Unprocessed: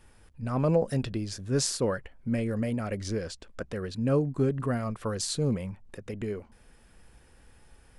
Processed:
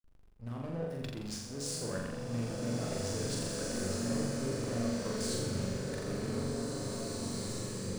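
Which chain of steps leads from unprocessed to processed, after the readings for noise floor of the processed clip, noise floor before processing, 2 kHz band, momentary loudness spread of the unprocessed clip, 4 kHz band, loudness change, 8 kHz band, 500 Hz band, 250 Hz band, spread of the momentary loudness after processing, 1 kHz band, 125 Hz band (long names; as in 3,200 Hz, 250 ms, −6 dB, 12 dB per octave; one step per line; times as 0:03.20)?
−53 dBFS, −58 dBFS, −3.0 dB, 13 LU, −2.5 dB, −6.0 dB, −2.0 dB, −6.5 dB, −5.0 dB, 6 LU, −6.0 dB, −6.5 dB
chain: high-shelf EQ 4,800 Hz +8 dB
hum removal 71.96 Hz, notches 20
reversed playback
downward compressor 8 to 1, threshold −38 dBFS, peak gain reduction 17.5 dB
reversed playback
slack as between gear wheels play −41.5 dBFS
on a send: flutter between parallel walls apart 7.3 metres, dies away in 1 s
on the sum: slow-attack reverb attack 2,260 ms, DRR −2.5 dB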